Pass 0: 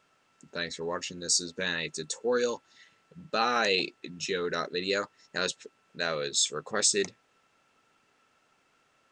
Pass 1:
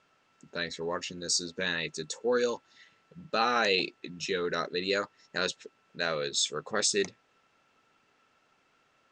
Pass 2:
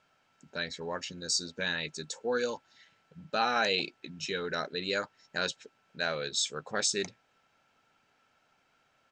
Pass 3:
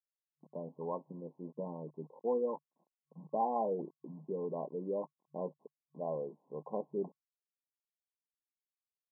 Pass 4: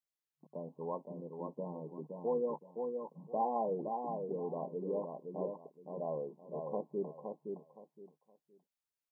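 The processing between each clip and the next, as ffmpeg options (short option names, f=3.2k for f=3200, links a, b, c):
-af "lowpass=6.4k"
-af "aecho=1:1:1.3:0.32,volume=-2dB"
-af "aeval=exprs='val(0)*gte(abs(val(0)),0.00224)':c=same,afftfilt=real='re*between(b*sr/4096,140,1100)':imag='im*between(b*sr/4096,140,1100)':win_size=4096:overlap=0.75,volume=-1.5dB"
-af "aecho=1:1:517|1034|1551:0.562|0.135|0.0324,volume=-1dB"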